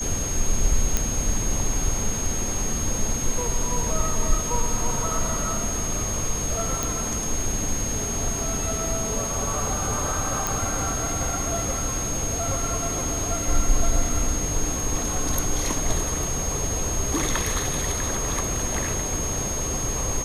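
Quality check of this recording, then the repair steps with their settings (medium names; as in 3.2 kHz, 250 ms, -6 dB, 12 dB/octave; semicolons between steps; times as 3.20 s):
whine 6.5 kHz -28 dBFS
0.97 s: pop -6 dBFS
6.83 s: pop
10.47 s: pop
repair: de-click; band-stop 6.5 kHz, Q 30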